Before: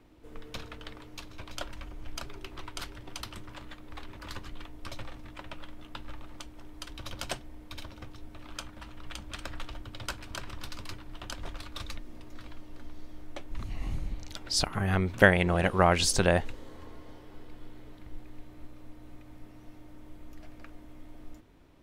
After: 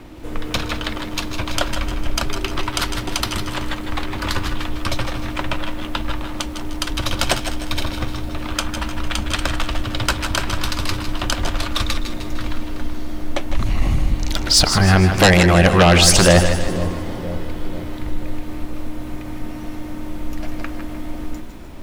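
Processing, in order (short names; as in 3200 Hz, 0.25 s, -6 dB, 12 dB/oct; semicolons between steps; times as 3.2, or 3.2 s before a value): notch 440 Hz, Q 12; in parallel at 0 dB: compressor, threshold -37 dBFS, peak gain reduction 22 dB; on the sum: sine folder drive 12 dB, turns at -4 dBFS; on a send: split-band echo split 590 Hz, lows 0.487 s, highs 0.151 s, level -11.5 dB; on the sum: lo-fi delay 0.161 s, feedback 35%, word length 7-bit, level -10 dB; gain -2 dB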